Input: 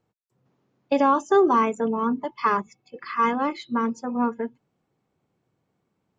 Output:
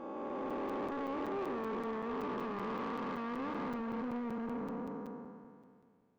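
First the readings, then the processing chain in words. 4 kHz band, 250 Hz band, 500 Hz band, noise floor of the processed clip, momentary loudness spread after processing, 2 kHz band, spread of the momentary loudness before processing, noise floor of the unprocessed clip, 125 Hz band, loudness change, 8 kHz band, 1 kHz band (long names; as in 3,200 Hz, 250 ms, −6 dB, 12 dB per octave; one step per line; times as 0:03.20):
−12.5 dB, −11.5 dB, −13.5 dB, −67 dBFS, 7 LU, −13.5 dB, 13 LU, −76 dBFS, −5.5 dB, −15.5 dB, can't be measured, −16.5 dB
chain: spectrum smeared in time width 1,440 ms
downward compressor, threshold −32 dBFS, peak gain reduction 7 dB
low-pass filter 2,400 Hz 6 dB per octave
soft clipping −37.5 dBFS, distortion −10 dB
dynamic equaliser 470 Hz, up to +4 dB, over −52 dBFS, Q 0.88
regular buffer underruns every 0.19 s, samples 256, zero, from 0:00.50
level +1 dB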